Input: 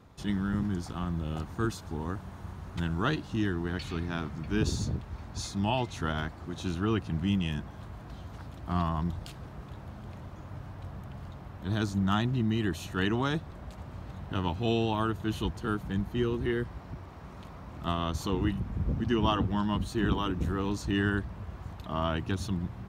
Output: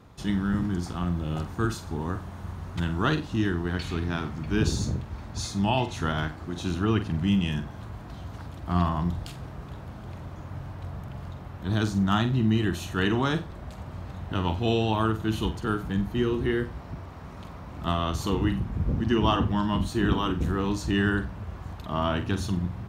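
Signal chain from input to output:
flutter between parallel walls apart 7.8 metres, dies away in 0.28 s
level +3.5 dB

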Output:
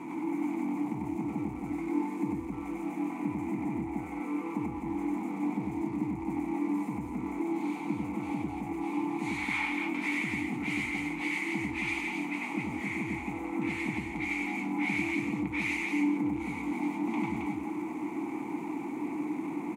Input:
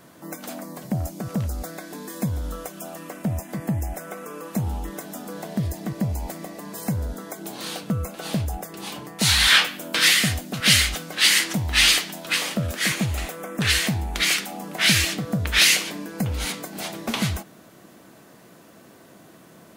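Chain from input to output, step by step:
converter with a step at zero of −22 dBFS
formant filter u
flat-topped bell 3,900 Hz −11.5 dB 1.2 octaves
on a send: loudspeakers that aren't time-aligned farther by 33 metres −1 dB, 92 metres −3 dB

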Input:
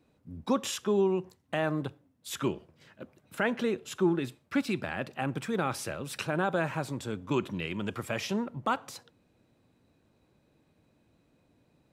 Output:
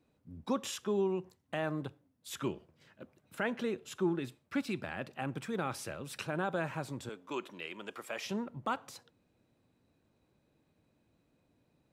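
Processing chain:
0:07.09–0:08.26: high-pass filter 400 Hz 12 dB per octave
level −5.5 dB

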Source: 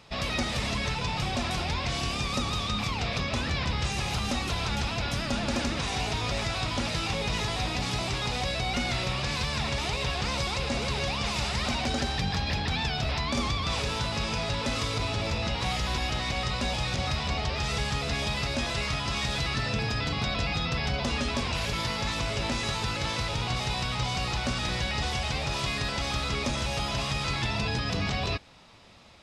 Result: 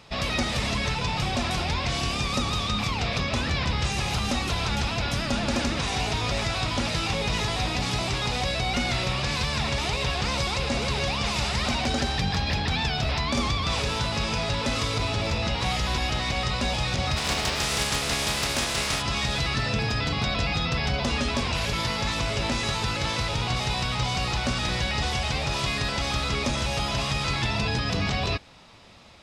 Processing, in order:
0:17.16–0:19.01: compressing power law on the bin magnitudes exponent 0.5
level +3 dB

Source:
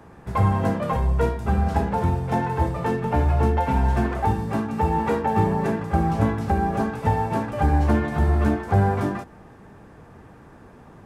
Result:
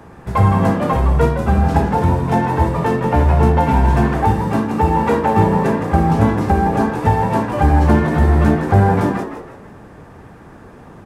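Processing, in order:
echo with shifted repeats 163 ms, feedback 37%, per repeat +83 Hz, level −9.5 dB
level +6.5 dB

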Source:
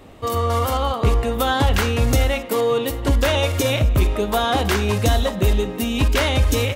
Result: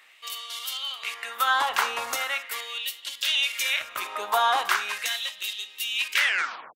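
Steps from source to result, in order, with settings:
turntable brake at the end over 0.55 s
auto-filter high-pass sine 0.4 Hz 960–3,300 Hz
level −4 dB

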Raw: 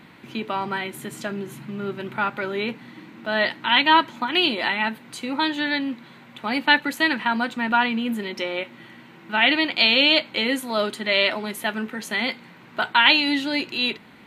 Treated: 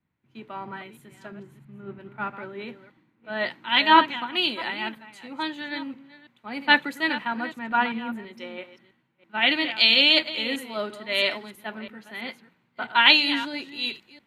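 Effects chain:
delay that plays each chunk backwards 330 ms, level −9 dB
0:11.49–0:12.88: dynamic equaliser 7,200 Hz, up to −7 dB, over −47 dBFS, Q 1.1
multiband upward and downward expander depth 100%
level −6.5 dB

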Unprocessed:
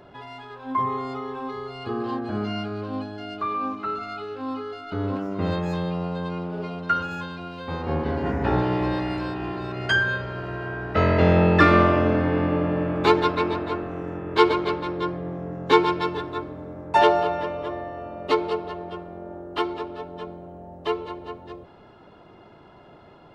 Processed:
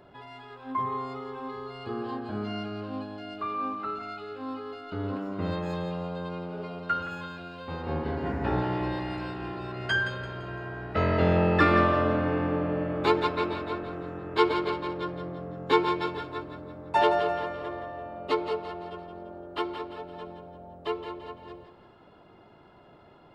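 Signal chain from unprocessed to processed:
notch filter 6,000 Hz, Q 7.5
on a send: feedback echo with a high-pass in the loop 170 ms, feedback 43%, level −9 dB
on the sum: level −5.5 dB

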